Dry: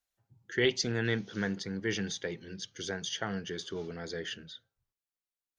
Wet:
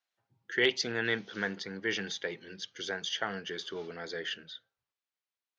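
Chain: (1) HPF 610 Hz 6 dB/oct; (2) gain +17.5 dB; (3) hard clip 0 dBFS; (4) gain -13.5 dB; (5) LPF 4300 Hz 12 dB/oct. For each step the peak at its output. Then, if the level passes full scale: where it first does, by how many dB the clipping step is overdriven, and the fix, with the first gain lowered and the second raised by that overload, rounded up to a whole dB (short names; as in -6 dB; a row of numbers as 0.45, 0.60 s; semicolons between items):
-14.5, +3.0, 0.0, -13.5, -13.0 dBFS; step 2, 3.0 dB; step 2 +14.5 dB, step 4 -10.5 dB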